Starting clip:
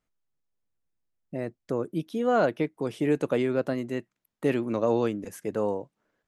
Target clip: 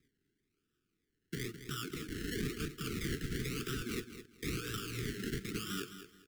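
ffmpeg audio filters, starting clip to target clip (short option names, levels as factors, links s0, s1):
-filter_complex "[0:a]highpass=280,afftfilt=real='re*lt(hypot(re,im),0.0562)':imag='im*lt(hypot(re,im),0.0562)':win_size=1024:overlap=0.75,asplit=2[s0][s1];[s1]acompressor=threshold=0.00251:ratio=10,volume=1.26[s2];[s0][s2]amix=inputs=2:normalize=0,flanger=delay=8.6:depth=5.6:regen=78:speed=2:shape=sinusoidal,acrusher=samples=29:mix=1:aa=0.000001:lfo=1:lforange=17.4:lforate=1,aeval=exprs='0.0133*(abs(mod(val(0)/0.0133+3,4)-2)-1)':c=same,asuperstop=centerf=750:order=12:qfactor=0.88,asplit=2[s3][s4];[s4]aecho=0:1:211|422|633:0.282|0.0648|0.0149[s5];[s3][s5]amix=inputs=2:normalize=0,volume=3.35"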